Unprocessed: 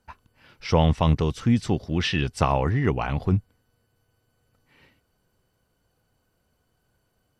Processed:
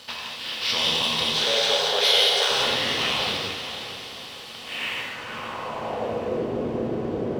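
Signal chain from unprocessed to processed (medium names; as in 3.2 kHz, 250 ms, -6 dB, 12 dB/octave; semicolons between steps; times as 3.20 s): spectral levelling over time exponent 0.4; bass shelf 470 Hz +6 dB; 1.31–2.51 s: frequency shift +330 Hz; in parallel at -6.5 dB: wavefolder -7 dBFS; on the sum: band-pass sweep 3.9 kHz -> 370 Hz, 4.45–6.40 s; waveshaping leveller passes 2; on a send: echo that smears into a reverb 513 ms, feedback 50%, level -10 dB; on the sum: gated-style reverb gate 260 ms flat, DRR -4 dB; trim -4 dB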